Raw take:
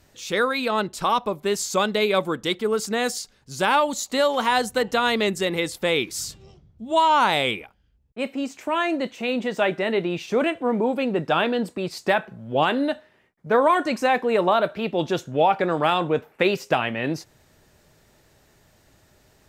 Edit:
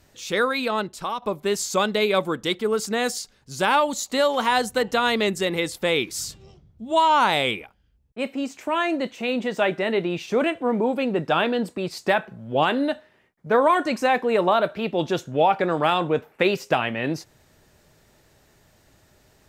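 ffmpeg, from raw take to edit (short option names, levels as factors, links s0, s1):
-filter_complex "[0:a]asplit=2[s0][s1];[s0]atrim=end=1.22,asetpts=PTS-STARTPTS,afade=t=out:st=0.61:d=0.61:silence=0.316228[s2];[s1]atrim=start=1.22,asetpts=PTS-STARTPTS,afade=t=in:d=0.004:c=hsin:silence=0.316228[s3];[s2][s3]concat=n=2:v=0:a=1"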